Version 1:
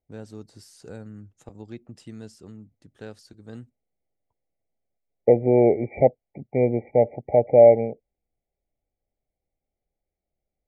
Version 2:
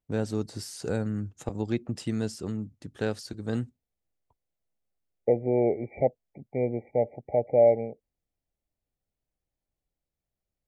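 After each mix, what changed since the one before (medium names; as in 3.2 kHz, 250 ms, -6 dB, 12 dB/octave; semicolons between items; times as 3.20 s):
first voice +10.5 dB; second voice -7.0 dB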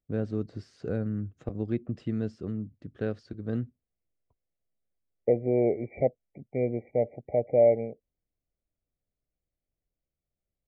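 first voice: add tape spacing loss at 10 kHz 35 dB; master: add peaking EQ 880 Hz -13 dB 0.3 oct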